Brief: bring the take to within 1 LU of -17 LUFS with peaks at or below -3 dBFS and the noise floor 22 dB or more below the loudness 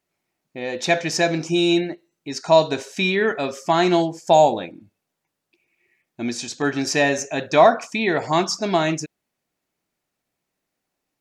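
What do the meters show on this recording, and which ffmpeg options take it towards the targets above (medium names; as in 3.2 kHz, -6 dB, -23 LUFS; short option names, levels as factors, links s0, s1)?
loudness -20.0 LUFS; peak level -3.0 dBFS; loudness target -17.0 LUFS
-> -af "volume=1.41,alimiter=limit=0.708:level=0:latency=1"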